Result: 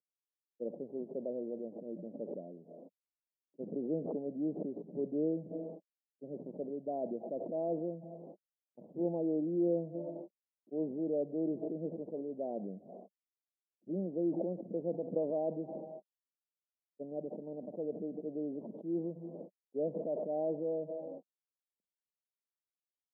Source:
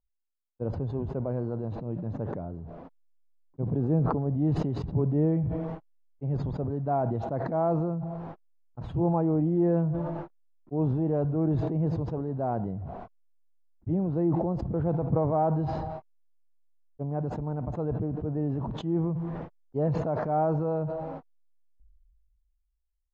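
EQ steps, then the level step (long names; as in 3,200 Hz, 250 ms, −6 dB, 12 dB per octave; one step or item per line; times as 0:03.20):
elliptic band-pass filter 190–590 Hz, stop band 50 dB
low-shelf EQ 330 Hz −12 dB
0.0 dB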